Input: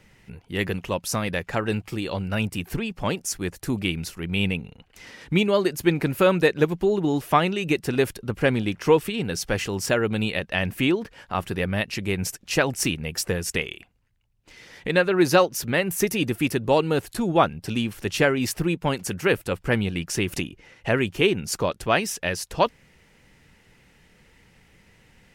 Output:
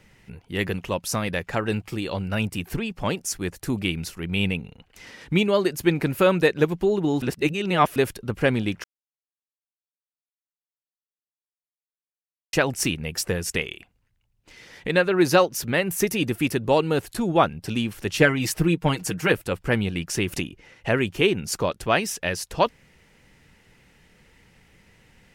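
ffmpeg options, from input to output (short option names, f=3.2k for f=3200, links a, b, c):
-filter_complex "[0:a]asettb=1/sr,asplit=3[a][b][c];[a]atrim=end=18.204[d];[b]atrim=start=18.2:end=19.32,asetpts=PTS-STARTPTS,afade=t=in:d=0.004:c=qsin,afade=t=out:st=1.116:d=0.004:c=qsin,aecho=1:1:6.4:0.7,atrim=end_sample=49392[e];[c]atrim=start=19.316[f];[d][e]acrossfade=d=0.004:c1=hsin:c2=qsin[g];[g][f]acrossfade=d=0.004:c1=qsin:c2=hsin,asplit=5[h][i][j][k][l];[h]atrim=end=7.222[m];[i]atrim=start=7.218:end=7.962,asetpts=PTS-STARTPTS,areverse[n];[j]atrim=start=7.958:end=8.84,asetpts=PTS-STARTPTS,afade=t=out:st=0.878:d=0.004:c=hsin[o];[k]atrim=start=8.84:end=12.53,asetpts=PTS-STARTPTS,volume=0[p];[l]atrim=start=12.53,asetpts=PTS-STARTPTS,afade=t=in:d=0.004:c=hsin[q];[m][n]acrossfade=d=0.004:c1=hsin:c2=hsin[r];[o][p][q]concat=n=3:v=0:a=1[s];[r][s]acrossfade=d=0.004:c1=hsin:c2=hsin"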